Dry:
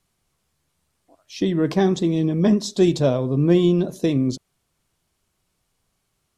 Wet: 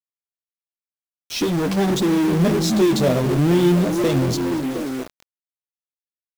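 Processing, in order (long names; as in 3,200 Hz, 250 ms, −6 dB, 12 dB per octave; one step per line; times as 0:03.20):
0:02.68–0:04.02: low-shelf EQ 91 Hz −7.5 dB
on a send: echo through a band-pass that steps 238 ms, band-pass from 160 Hz, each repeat 0.7 octaves, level −6.5 dB
on the sum: flanger 0.49 Hz, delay 8 ms, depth 8.1 ms, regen −6%
0:01.44–0:01.89: tuned comb filter 150 Hz, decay 1.6 s, mix 40%
in parallel at −10 dB: fuzz pedal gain 41 dB, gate −47 dBFS
on the sum: bit reduction 6 bits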